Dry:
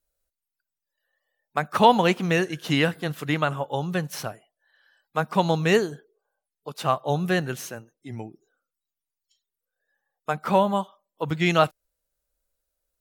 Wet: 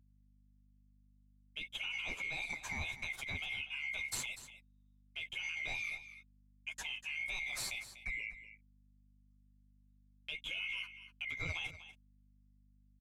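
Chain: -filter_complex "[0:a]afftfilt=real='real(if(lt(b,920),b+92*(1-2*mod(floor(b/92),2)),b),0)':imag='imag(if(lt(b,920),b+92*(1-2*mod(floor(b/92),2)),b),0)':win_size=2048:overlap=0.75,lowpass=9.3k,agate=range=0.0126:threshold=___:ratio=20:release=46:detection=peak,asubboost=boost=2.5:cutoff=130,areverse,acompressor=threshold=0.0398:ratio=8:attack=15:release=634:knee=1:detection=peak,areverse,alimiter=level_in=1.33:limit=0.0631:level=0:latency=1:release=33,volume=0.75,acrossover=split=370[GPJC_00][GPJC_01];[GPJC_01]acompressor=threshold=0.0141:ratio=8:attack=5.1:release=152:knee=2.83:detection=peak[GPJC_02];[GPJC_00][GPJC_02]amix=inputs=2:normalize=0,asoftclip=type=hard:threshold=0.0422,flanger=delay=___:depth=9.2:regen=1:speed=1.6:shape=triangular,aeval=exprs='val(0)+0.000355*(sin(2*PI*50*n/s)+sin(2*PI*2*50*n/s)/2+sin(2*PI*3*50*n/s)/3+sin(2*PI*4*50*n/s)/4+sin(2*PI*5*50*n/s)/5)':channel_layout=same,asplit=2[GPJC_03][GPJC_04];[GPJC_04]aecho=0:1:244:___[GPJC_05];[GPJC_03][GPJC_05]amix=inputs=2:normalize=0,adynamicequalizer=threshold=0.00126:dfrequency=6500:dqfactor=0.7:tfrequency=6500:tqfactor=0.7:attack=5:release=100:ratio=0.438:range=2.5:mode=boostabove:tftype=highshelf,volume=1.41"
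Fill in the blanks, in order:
0.00398, 3.8, 0.211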